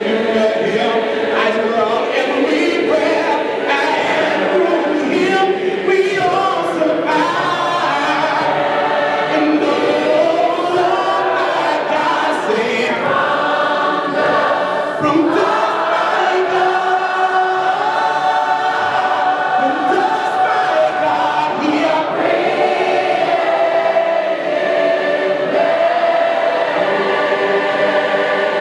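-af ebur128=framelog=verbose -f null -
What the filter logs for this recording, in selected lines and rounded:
Integrated loudness:
  I:         -15.0 LUFS
  Threshold: -25.0 LUFS
Loudness range:
  LRA:         0.5 LU
  Threshold: -35.0 LUFS
  LRA low:   -15.3 LUFS
  LRA high:  -14.7 LUFS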